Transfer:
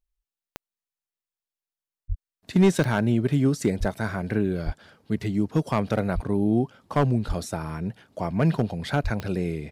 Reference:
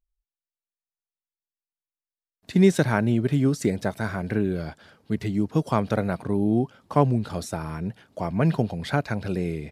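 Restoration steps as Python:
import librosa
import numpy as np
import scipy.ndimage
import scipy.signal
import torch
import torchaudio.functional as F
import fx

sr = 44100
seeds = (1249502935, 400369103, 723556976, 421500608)

y = fx.fix_declip(x, sr, threshold_db=-12.0)
y = fx.fix_declick_ar(y, sr, threshold=10.0)
y = fx.fix_deplosive(y, sr, at_s=(2.08, 3.79, 4.65, 6.14, 7.27, 9.03))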